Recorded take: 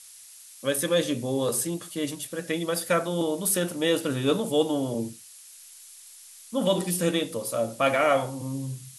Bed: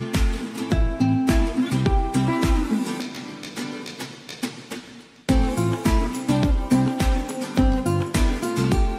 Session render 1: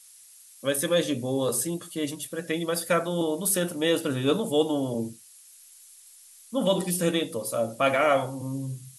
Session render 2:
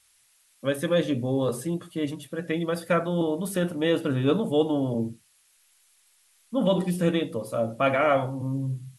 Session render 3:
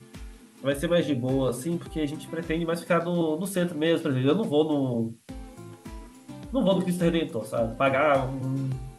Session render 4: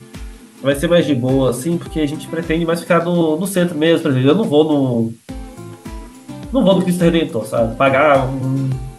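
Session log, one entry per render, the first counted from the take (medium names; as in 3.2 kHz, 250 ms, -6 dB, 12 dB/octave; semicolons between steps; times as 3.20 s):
noise reduction 6 dB, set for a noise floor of -48 dBFS
tone controls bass +5 dB, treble -13 dB
add bed -21.5 dB
trim +10.5 dB; peak limiter -1 dBFS, peak gain reduction 1.5 dB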